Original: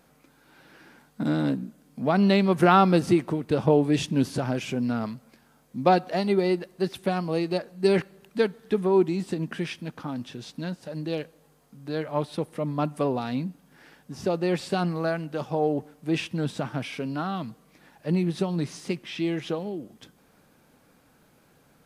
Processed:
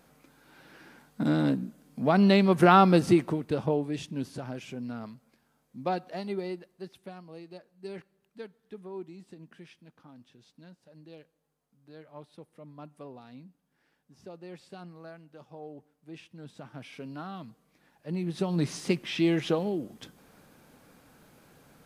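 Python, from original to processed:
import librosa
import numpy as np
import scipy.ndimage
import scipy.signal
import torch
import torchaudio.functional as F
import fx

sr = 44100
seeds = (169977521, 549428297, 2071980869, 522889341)

y = fx.gain(x, sr, db=fx.line((3.22, -0.5), (3.94, -10.5), (6.36, -10.5), (7.23, -19.5), (16.32, -19.5), (17.0, -10.0), (18.08, -10.0), (18.7, 2.5)))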